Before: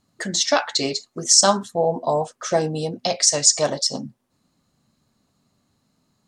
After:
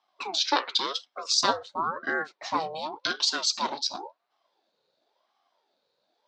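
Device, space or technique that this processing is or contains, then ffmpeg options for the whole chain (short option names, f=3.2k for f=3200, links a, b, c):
voice changer toy: -af "aeval=exprs='val(0)*sin(2*PI*630*n/s+630*0.55/0.93*sin(2*PI*0.93*n/s))':c=same,highpass=430,equalizer=f=460:t=q:w=4:g=-3,equalizer=f=1.2k:t=q:w=4:g=-3,equalizer=f=1.9k:t=q:w=4:g=-4,equalizer=f=4k:t=q:w=4:g=6,lowpass=f=4.8k:w=0.5412,lowpass=f=4.8k:w=1.3066,volume=-1.5dB"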